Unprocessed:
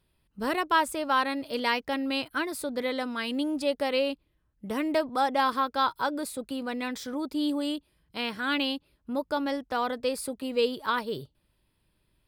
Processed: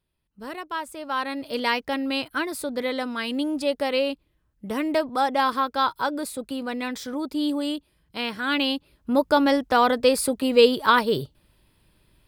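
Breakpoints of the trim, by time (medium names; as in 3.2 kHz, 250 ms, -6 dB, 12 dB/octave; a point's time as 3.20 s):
0.85 s -7 dB
1.51 s +3 dB
8.46 s +3 dB
9.20 s +10 dB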